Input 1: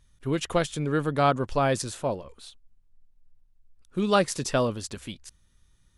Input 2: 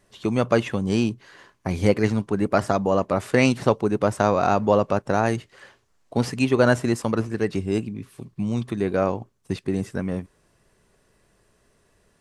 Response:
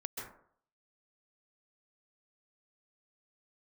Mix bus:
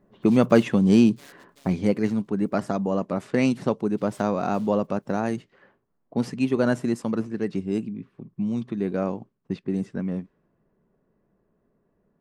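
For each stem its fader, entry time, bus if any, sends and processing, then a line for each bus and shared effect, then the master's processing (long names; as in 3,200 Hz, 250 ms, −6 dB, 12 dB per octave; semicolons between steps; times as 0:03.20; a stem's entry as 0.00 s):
−17.5 dB, 0.00 s, no send, high-pass filter 260 Hz; treble cut that deepens with the level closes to 1,100 Hz, closed at −23.5 dBFS; short delay modulated by noise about 3,400 Hz, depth 0.34 ms; automatic ducking −15 dB, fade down 1.70 s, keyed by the second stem
0:01.60 −1 dB → 0:01.86 −8 dB, 0.00 s, no send, low-pass that shuts in the quiet parts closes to 1,100 Hz, open at −18 dBFS; low-shelf EQ 250 Hz +10 dB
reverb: not used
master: low shelf with overshoot 130 Hz −11 dB, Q 1.5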